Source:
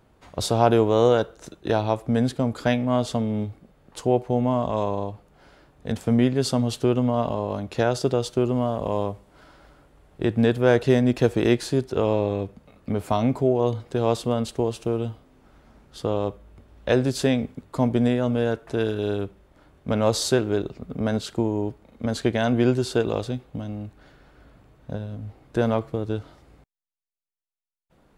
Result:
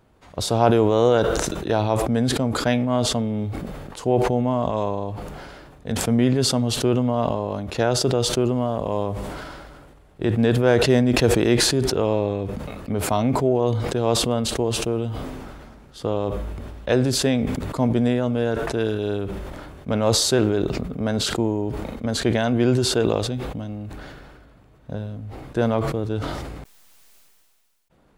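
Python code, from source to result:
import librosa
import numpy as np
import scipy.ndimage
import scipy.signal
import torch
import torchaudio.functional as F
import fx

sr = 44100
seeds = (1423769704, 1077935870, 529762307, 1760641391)

y = fx.sustainer(x, sr, db_per_s=27.0)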